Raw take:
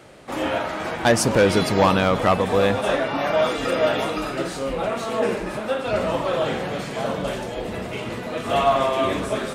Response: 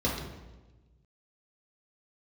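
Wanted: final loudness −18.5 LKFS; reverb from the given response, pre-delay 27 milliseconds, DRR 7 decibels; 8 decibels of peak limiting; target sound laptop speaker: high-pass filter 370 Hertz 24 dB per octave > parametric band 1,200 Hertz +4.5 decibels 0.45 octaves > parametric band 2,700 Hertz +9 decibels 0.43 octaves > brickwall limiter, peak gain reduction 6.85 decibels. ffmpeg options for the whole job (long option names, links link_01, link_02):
-filter_complex "[0:a]alimiter=limit=-15dB:level=0:latency=1,asplit=2[link_01][link_02];[1:a]atrim=start_sample=2205,adelay=27[link_03];[link_02][link_03]afir=irnorm=-1:irlink=0,volume=-17dB[link_04];[link_01][link_04]amix=inputs=2:normalize=0,highpass=frequency=370:width=0.5412,highpass=frequency=370:width=1.3066,equalizer=frequency=1200:width_type=o:width=0.45:gain=4.5,equalizer=frequency=2700:width_type=o:width=0.43:gain=9,volume=6dB,alimiter=limit=-9dB:level=0:latency=1"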